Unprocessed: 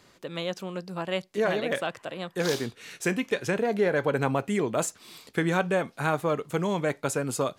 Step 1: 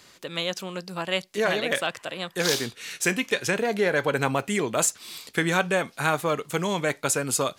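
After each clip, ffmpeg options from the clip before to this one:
ffmpeg -i in.wav -af "tiltshelf=frequency=1500:gain=-5,volume=4.5dB" out.wav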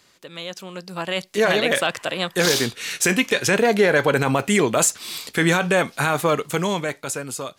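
ffmpeg -i in.wav -af "alimiter=limit=-15dB:level=0:latency=1:release=17,dynaudnorm=framelen=200:gausssize=11:maxgain=14.5dB,volume=-4.5dB" out.wav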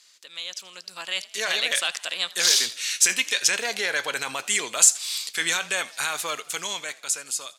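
ffmpeg -i in.wav -filter_complex "[0:a]bandpass=frequency=6100:width_type=q:width=0.85:csg=0,asplit=5[link_01][link_02][link_03][link_04][link_05];[link_02]adelay=82,afreqshift=46,volume=-20.5dB[link_06];[link_03]adelay=164,afreqshift=92,volume=-26.7dB[link_07];[link_04]adelay=246,afreqshift=138,volume=-32.9dB[link_08];[link_05]adelay=328,afreqshift=184,volume=-39.1dB[link_09];[link_01][link_06][link_07][link_08][link_09]amix=inputs=5:normalize=0,volume=5dB" out.wav

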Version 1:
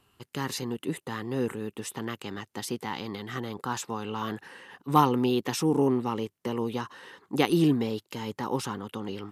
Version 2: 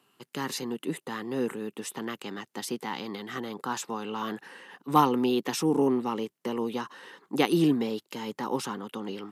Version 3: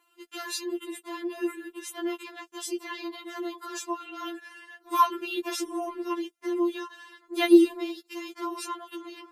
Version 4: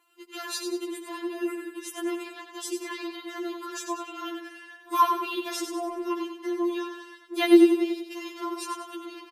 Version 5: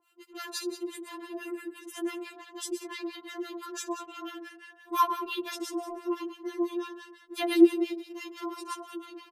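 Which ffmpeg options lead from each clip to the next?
ffmpeg -i in.wav -af "highpass=frequency=160:width=0.5412,highpass=frequency=160:width=1.3066" out.wav
ffmpeg -i in.wav -af "afftfilt=real='re*4*eq(mod(b,16),0)':imag='im*4*eq(mod(b,16),0)':win_size=2048:overlap=0.75,volume=2.5dB" out.wav
ffmpeg -i in.wav -af "aecho=1:1:95|190|285|380|475:0.447|0.197|0.0865|0.0381|0.0167" out.wav
ffmpeg -i in.wav -filter_complex "[0:a]acrossover=split=930[link_01][link_02];[link_01]aeval=exprs='val(0)*(1-1/2+1/2*cos(2*PI*5.9*n/s))':channel_layout=same[link_03];[link_02]aeval=exprs='val(0)*(1-1/2-1/2*cos(2*PI*5.9*n/s))':channel_layout=same[link_04];[link_03][link_04]amix=inputs=2:normalize=0,volume=1dB" out.wav

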